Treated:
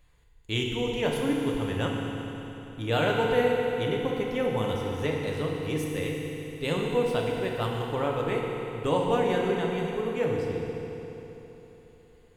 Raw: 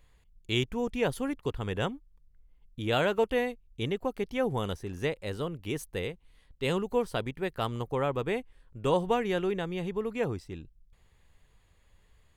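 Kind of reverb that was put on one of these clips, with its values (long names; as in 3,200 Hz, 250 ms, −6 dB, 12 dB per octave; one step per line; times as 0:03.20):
feedback delay network reverb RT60 3.6 s, high-frequency decay 0.9×, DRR −1.5 dB
level −1 dB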